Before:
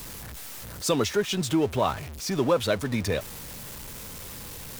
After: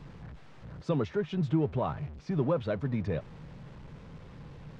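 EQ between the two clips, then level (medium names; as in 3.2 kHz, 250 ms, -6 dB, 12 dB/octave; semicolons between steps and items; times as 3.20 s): tape spacing loss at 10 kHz 39 dB; peaking EQ 150 Hz +10.5 dB 0.41 oct; -4.5 dB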